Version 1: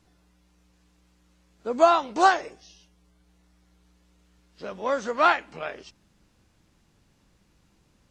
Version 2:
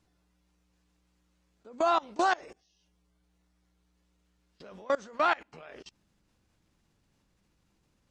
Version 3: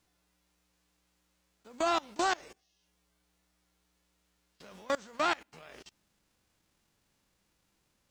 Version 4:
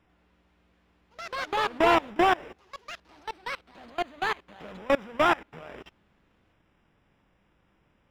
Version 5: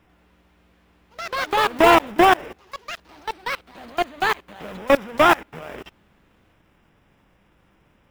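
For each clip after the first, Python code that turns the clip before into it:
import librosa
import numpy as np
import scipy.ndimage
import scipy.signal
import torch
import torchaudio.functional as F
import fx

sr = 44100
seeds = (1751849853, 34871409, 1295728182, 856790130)

y1 = fx.level_steps(x, sr, step_db=24)
y2 = fx.envelope_flatten(y1, sr, power=0.6)
y2 = y2 * librosa.db_to_amplitude(-3.5)
y3 = fx.halfwave_hold(y2, sr)
y3 = scipy.signal.savgol_filter(y3, 25, 4, mode='constant')
y3 = fx.echo_pitch(y3, sr, ms=95, semitones=4, count=3, db_per_echo=-6.0)
y3 = y3 * librosa.db_to_amplitude(4.0)
y4 = fx.block_float(y3, sr, bits=5)
y4 = y4 * librosa.db_to_amplitude(7.5)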